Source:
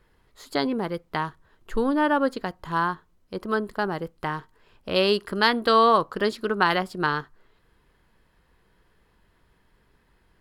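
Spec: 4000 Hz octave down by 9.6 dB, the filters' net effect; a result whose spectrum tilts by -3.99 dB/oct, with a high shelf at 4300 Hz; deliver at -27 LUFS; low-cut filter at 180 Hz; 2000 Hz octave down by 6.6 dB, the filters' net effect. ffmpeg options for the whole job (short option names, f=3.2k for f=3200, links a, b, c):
-af "highpass=180,equalizer=f=2k:t=o:g=-7,equalizer=f=4k:t=o:g=-7.5,highshelf=f=4.3k:g=-4.5,volume=-0.5dB"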